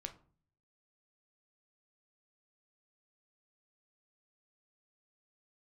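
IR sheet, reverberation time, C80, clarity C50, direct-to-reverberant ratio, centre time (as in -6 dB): 0.45 s, 19.5 dB, 14.0 dB, 5.5 dB, 8 ms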